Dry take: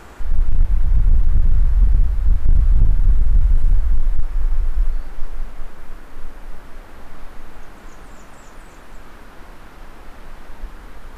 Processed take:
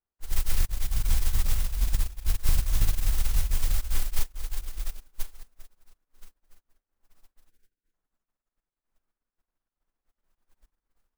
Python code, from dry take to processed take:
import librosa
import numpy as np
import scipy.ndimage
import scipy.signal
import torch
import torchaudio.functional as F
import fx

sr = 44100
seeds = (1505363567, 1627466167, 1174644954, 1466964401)

y = fx.mod_noise(x, sr, seeds[0], snr_db=17)
y = fx.spec_box(y, sr, start_s=7.49, length_s=0.45, low_hz=540.0, high_hz=1400.0, gain_db=-14)
y = fx.upward_expand(y, sr, threshold_db=-41.0, expansion=2.5)
y = y * 10.0 ** (-7.5 / 20.0)